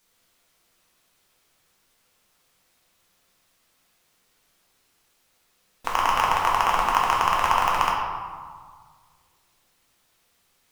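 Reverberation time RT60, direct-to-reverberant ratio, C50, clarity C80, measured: 1.7 s, -3.5 dB, 1.0 dB, 3.0 dB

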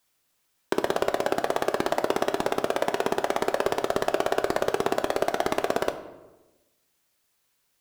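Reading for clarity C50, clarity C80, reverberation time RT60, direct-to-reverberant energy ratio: 11.5 dB, 13.5 dB, 1.1 s, 7.5 dB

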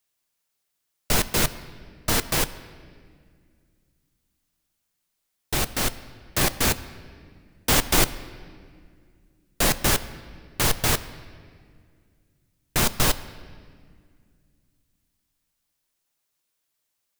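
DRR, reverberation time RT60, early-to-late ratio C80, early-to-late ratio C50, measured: 11.5 dB, 2.0 s, 16.5 dB, 15.5 dB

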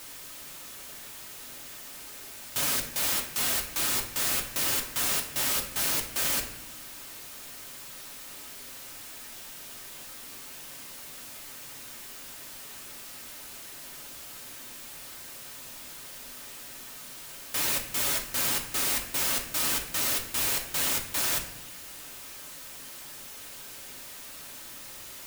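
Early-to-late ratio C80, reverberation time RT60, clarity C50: 11.5 dB, 0.70 s, 8.5 dB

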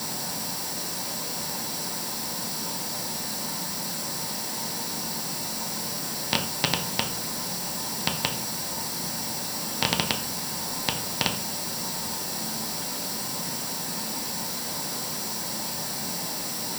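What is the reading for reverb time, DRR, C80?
0.40 s, 2.0 dB, 14.5 dB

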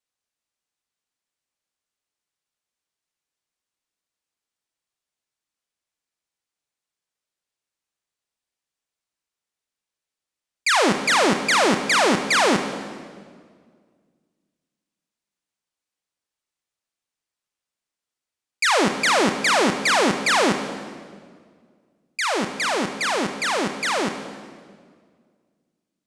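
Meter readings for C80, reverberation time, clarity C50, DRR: 9.5 dB, 1.9 s, 8.5 dB, 7.0 dB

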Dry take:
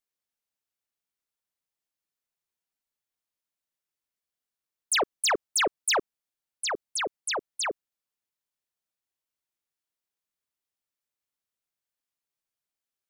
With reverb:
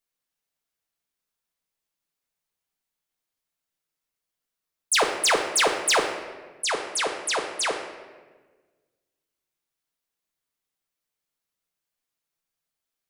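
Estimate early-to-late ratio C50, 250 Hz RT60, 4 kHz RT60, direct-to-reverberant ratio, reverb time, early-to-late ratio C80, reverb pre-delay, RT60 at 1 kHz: 6.5 dB, 1.7 s, 0.90 s, 2.0 dB, 1.4 s, 8.0 dB, 4 ms, 1.2 s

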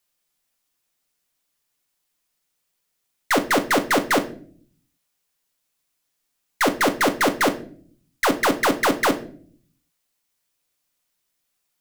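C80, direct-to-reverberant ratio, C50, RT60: 18.0 dB, 5.5 dB, 14.5 dB, 0.50 s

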